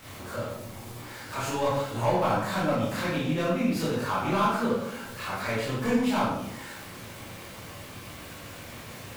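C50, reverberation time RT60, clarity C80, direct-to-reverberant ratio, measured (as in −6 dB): −0.5 dB, 0.80 s, 3.5 dB, −9.0 dB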